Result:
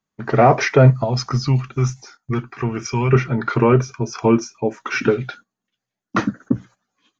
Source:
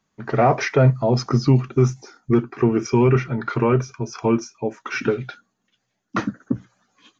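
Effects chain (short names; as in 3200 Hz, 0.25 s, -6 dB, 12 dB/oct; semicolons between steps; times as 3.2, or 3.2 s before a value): gate -45 dBFS, range -14 dB; 1.04–3.13 bell 340 Hz -12.5 dB 2.1 oct; gain +4 dB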